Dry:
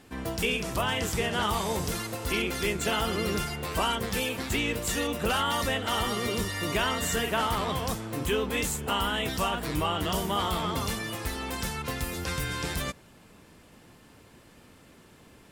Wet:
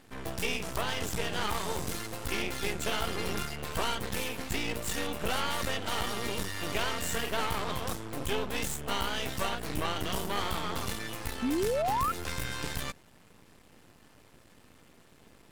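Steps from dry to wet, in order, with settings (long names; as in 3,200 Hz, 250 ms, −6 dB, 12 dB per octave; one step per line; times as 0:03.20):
half-wave rectification
sound drawn into the spectrogram rise, 0:11.42–0:12.12, 230–1,400 Hz −29 dBFS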